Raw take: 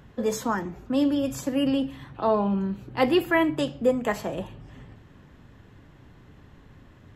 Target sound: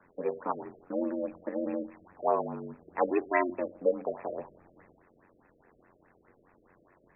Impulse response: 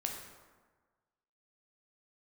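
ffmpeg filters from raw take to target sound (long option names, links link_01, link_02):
-filter_complex "[0:a]aeval=exprs='val(0)*sin(2*PI*45*n/s)':channel_layout=same,acrossover=split=340 5700:gain=0.112 1 0.251[link_01][link_02][link_03];[link_01][link_02][link_03]amix=inputs=3:normalize=0,afftfilt=real='re*lt(b*sr/1024,630*pow(2700/630,0.5+0.5*sin(2*PI*4.8*pts/sr)))':imag='im*lt(b*sr/1024,630*pow(2700/630,0.5+0.5*sin(2*PI*4.8*pts/sr)))':win_size=1024:overlap=0.75"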